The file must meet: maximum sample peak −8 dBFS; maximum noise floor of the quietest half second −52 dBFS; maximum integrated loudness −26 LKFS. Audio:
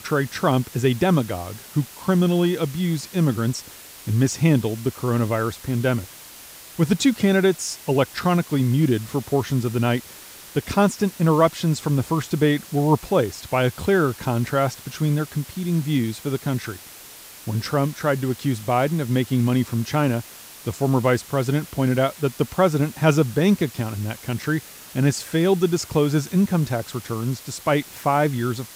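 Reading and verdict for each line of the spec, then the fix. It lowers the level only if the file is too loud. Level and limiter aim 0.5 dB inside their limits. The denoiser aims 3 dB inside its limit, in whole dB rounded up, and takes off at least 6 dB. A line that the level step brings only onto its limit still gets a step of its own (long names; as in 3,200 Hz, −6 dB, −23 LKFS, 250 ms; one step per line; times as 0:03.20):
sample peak −5.0 dBFS: out of spec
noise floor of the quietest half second −42 dBFS: out of spec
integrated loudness −22.0 LKFS: out of spec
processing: broadband denoise 9 dB, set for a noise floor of −42 dBFS
level −4.5 dB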